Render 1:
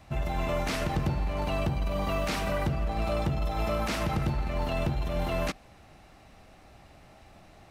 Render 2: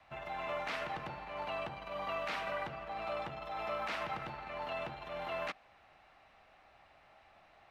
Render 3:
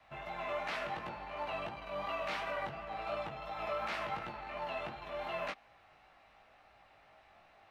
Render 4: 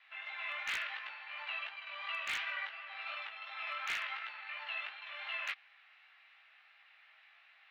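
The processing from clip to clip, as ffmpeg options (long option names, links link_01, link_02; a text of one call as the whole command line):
ffmpeg -i in.wav -filter_complex "[0:a]acrossover=split=110|1200|1900[link_01][link_02][link_03][link_04];[link_01]acompressor=threshold=-44dB:ratio=4[link_05];[link_05][link_02][link_03][link_04]amix=inputs=4:normalize=0,acrossover=split=590 3700:gain=0.158 1 0.126[link_06][link_07][link_08];[link_06][link_07][link_08]amix=inputs=3:normalize=0,volume=-3.5dB" out.wav
ffmpeg -i in.wav -af "flanger=delay=17:depth=3.6:speed=2.8,volume=3dB" out.wav
ffmpeg -i in.wav -af "asuperpass=centerf=2500:order=4:qfactor=1.1,aeval=exprs='0.0178*(abs(mod(val(0)/0.0178+3,4)-2)-1)':channel_layout=same,volume=6dB" out.wav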